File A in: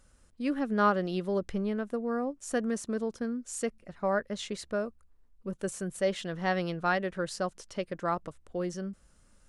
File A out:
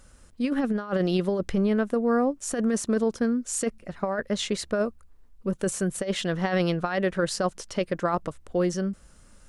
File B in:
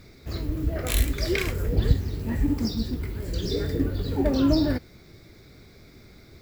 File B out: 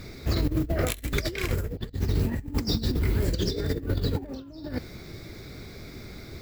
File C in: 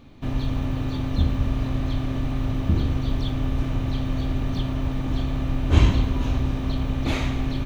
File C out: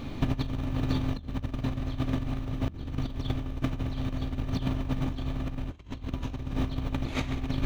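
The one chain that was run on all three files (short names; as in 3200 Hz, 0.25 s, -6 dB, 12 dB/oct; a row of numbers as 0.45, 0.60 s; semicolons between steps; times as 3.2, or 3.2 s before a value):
negative-ratio compressor -30 dBFS, ratio -0.5; normalise peaks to -12 dBFS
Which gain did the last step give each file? +7.0, +3.0, +1.5 dB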